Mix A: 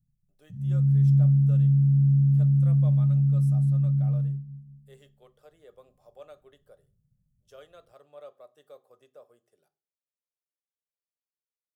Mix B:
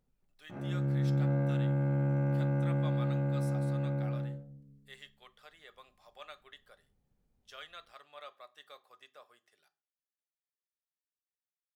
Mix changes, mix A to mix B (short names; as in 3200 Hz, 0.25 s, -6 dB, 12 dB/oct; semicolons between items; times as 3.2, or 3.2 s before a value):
background: remove inverse Chebyshev band-stop 320–2100 Hz, stop band 40 dB; master: add ten-band EQ 125 Hz -11 dB, 250 Hz -4 dB, 500 Hz -10 dB, 1000 Hz +5 dB, 2000 Hz +11 dB, 4000 Hz +10 dB